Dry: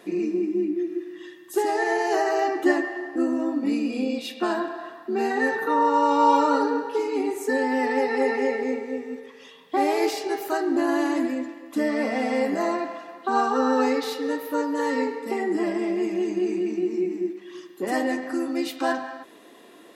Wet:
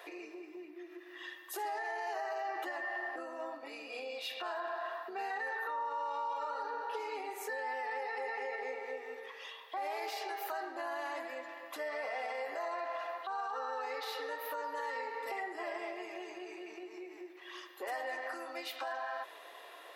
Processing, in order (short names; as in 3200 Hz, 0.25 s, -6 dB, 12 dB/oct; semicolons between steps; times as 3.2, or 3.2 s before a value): compressor 4:1, threshold -31 dBFS, peak gain reduction 14.5 dB; HPF 590 Hz 24 dB/oct; bell 7800 Hz -10 dB 1.2 oct; limiter -33 dBFS, peak gain reduction 10.5 dB; gain +2.5 dB